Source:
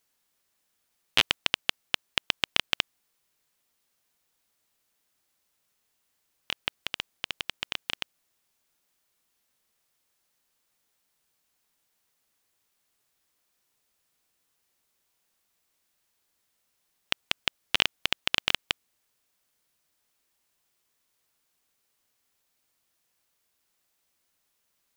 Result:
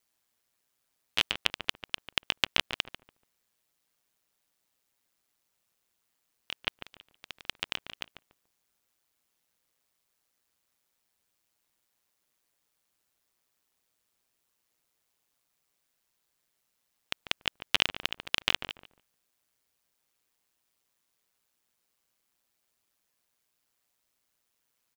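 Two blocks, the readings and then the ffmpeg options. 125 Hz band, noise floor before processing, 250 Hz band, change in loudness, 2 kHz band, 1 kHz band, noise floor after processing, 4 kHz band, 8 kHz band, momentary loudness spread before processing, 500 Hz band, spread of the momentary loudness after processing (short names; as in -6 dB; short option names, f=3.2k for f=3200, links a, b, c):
-2.0 dB, -76 dBFS, -2.0 dB, -2.0 dB, -2.5 dB, -2.5 dB, -79 dBFS, -3.0 dB, -3.0 dB, 10 LU, -2.0 dB, 16 LU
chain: -filter_complex "[0:a]aeval=exprs='val(0)*sin(2*PI*60*n/s)':c=same,asplit=2[a][b];[b]adelay=144,lowpass=f=1.2k:p=1,volume=-7dB,asplit=2[c][d];[d]adelay=144,lowpass=f=1.2k:p=1,volume=0.26,asplit=2[e][f];[f]adelay=144,lowpass=f=1.2k:p=1,volume=0.26[g];[a][c][e][g]amix=inputs=4:normalize=0"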